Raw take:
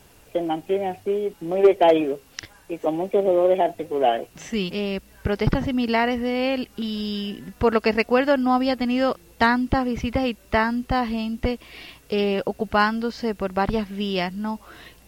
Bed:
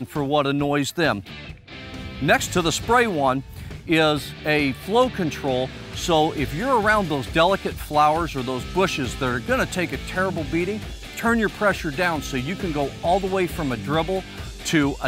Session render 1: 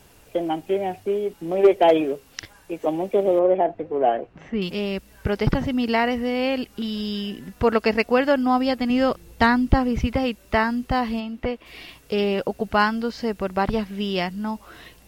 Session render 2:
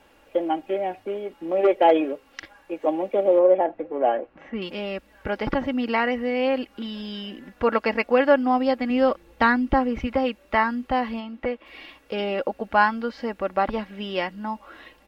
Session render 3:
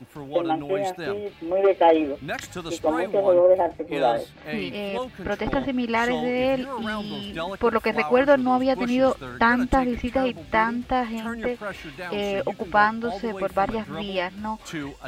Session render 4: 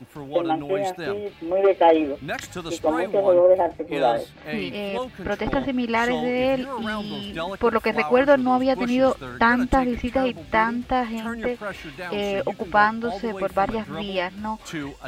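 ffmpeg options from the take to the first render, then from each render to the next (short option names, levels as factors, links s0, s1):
-filter_complex "[0:a]asettb=1/sr,asplit=3[s0][s1][s2];[s0]atrim=end=3.394[s3];[s1]atrim=start=3.39:end=4.62,asetpts=PTS-STARTPTS,afade=t=in:d=0.004:c=qsin,afade=t=out:st=1.226:d=0.004:c=qsin,lowpass=1700[s4];[s2]atrim=start=4.616[s5];[s3][s4]acrossfade=d=0.004:c1=hsin:c2=qsin[s6];[s6][s5]acrossfade=d=0.004:c1=qsin:c2=hsin,asettb=1/sr,asplit=3[s7][s8][s9];[s7]atrim=end=8.904[s10];[s8]atrim=start=8.9:end=10.07,asetpts=PTS-STARTPTS,afade=t=in:d=0.004:c=qsin,afade=t=out:st=1.166:d=0.004:c=qsin,lowshelf=f=140:g=9.5[s11];[s9]atrim=start=10.066[s12];[s10][s11]acrossfade=d=0.004:c1=hsin:c2=qsin[s13];[s13][s12]acrossfade=d=0.004:c1=qsin:c2=hsin,asplit=3[s14][s15][s16];[s14]afade=t=out:st=11.19:d=0.02[s17];[s15]bass=f=250:g=-7,treble=f=4000:g=-13,afade=t=in:st=11.19:d=0.02,afade=t=out:st=11.65:d=0.02[s18];[s16]afade=t=in:st=11.65:d=0.02[s19];[s17][s18][s19]amix=inputs=3:normalize=0"
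-af "bass=f=250:g=-11,treble=f=4000:g=-15,aecho=1:1:3.6:0.49"
-filter_complex "[1:a]volume=0.224[s0];[0:a][s0]amix=inputs=2:normalize=0"
-af "volume=1.12"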